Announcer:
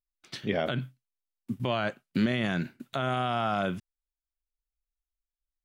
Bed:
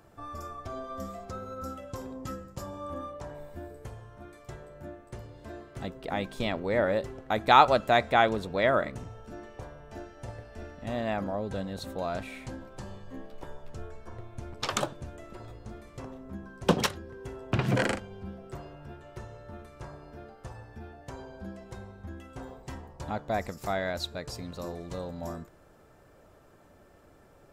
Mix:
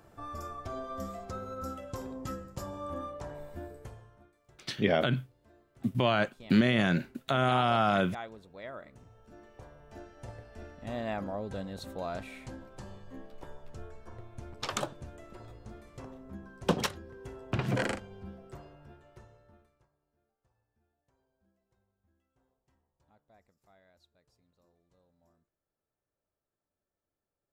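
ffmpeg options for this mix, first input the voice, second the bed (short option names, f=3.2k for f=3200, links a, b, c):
-filter_complex "[0:a]adelay=4350,volume=2.5dB[a];[1:a]volume=14.5dB,afade=t=out:st=3.63:d=0.69:silence=0.11885,afade=t=in:st=8.81:d=1.43:silence=0.177828,afade=t=out:st=18.21:d=1.67:silence=0.0334965[b];[a][b]amix=inputs=2:normalize=0"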